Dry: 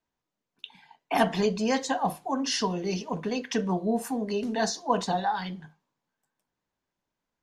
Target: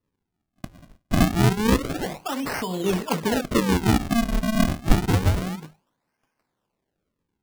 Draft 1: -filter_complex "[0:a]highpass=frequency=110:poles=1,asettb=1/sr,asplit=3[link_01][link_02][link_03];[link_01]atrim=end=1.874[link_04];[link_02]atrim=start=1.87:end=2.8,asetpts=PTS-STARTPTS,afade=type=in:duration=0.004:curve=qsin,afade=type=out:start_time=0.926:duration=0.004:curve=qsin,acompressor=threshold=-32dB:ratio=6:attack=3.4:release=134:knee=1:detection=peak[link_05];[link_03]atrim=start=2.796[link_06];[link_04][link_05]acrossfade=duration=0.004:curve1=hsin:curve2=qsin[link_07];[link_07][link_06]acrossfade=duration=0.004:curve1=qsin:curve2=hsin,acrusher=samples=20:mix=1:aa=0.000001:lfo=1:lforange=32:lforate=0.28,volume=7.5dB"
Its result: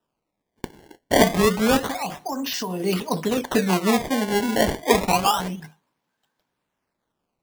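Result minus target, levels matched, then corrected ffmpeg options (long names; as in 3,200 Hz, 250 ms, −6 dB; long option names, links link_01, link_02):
sample-and-hold swept by an LFO: distortion −14 dB
-filter_complex "[0:a]highpass=frequency=110:poles=1,asettb=1/sr,asplit=3[link_01][link_02][link_03];[link_01]atrim=end=1.874[link_04];[link_02]atrim=start=1.87:end=2.8,asetpts=PTS-STARTPTS,afade=type=in:duration=0.004:curve=qsin,afade=type=out:start_time=0.926:duration=0.004:curve=qsin,acompressor=threshold=-32dB:ratio=6:attack=3.4:release=134:knee=1:detection=peak[link_05];[link_03]atrim=start=2.796[link_06];[link_04][link_05]acrossfade=duration=0.004:curve1=hsin:curve2=qsin[link_07];[link_07][link_06]acrossfade=duration=0.004:curve1=qsin:curve2=hsin,acrusher=samples=56:mix=1:aa=0.000001:lfo=1:lforange=89.6:lforate=0.28,volume=7.5dB"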